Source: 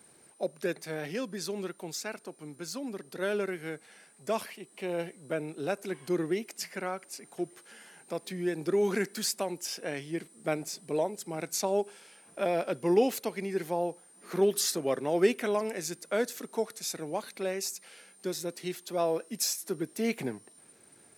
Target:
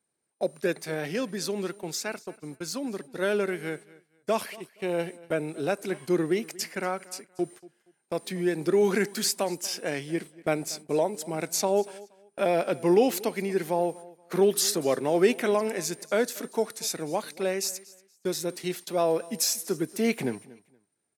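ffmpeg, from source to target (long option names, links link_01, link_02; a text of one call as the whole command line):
ffmpeg -i in.wav -filter_complex "[0:a]agate=range=-27dB:threshold=-45dB:ratio=16:detection=peak,asplit=2[link_01][link_02];[link_02]alimiter=limit=-20dB:level=0:latency=1,volume=-3dB[link_03];[link_01][link_03]amix=inputs=2:normalize=0,aecho=1:1:236|472:0.0891|0.0214" out.wav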